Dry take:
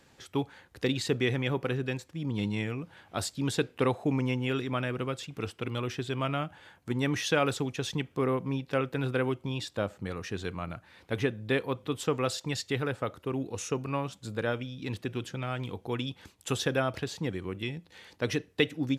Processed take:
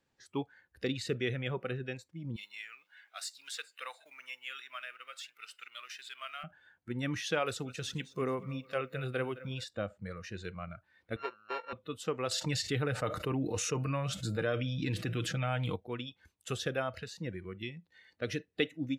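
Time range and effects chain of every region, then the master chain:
2.36–6.44 G.711 law mismatch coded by mu + Bessel high-pass 1600 Hz + echo 0.42 s -20.5 dB
7.45–9.64 high shelf 4000 Hz +4.5 dB + lo-fi delay 0.215 s, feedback 55%, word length 9-bit, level -14.5 dB
11.16–11.73 sample sorter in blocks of 32 samples + HPF 380 Hz + air absorption 340 m
12.31–15.76 comb 6.6 ms, depth 38% + fast leveller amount 70%
whole clip: spectral noise reduction 14 dB; high shelf 11000 Hz -8 dB; gain -5 dB

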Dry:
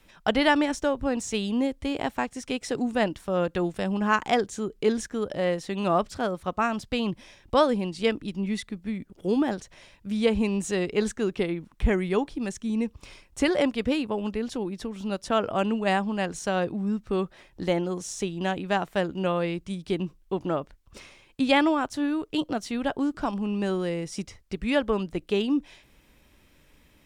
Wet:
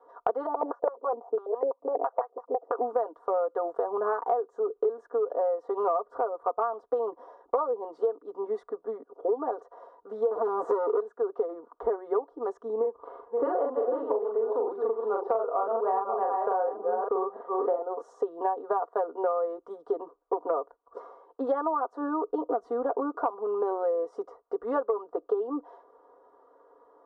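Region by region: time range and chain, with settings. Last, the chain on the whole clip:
0.46–2.79 bell 690 Hz +13 dB 1.8 oct + stepped band-pass 12 Hz 200–2000 Hz
5.88–6.46 bell 5400 Hz -9 dB 1.6 oct + backwards sustainer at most 130 dB/s
10.31–11 HPF 51 Hz + de-esser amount 100% + sample leveller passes 5
12.79–17.82 reverse delay 0.305 s, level -7 dB + LPF 3500 Hz 24 dB/oct + doubler 40 ms -2 dB
22.24–23 tone controls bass +14 dB, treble +1 dB + compressor 4:1, threshold -23 dBFS
whole clip: elliptic band-pass 380–1200 Hz, stop band 40 dB; comb 4.2 ms, depth 94%; compressor 12:1, threshold -33 dBFS; gain +9 dB

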